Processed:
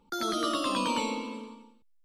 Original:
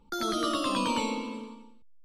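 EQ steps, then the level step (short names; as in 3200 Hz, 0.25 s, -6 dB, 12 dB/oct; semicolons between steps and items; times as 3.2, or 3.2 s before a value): low shelf 100 Hz -11 dB; 0.0 dB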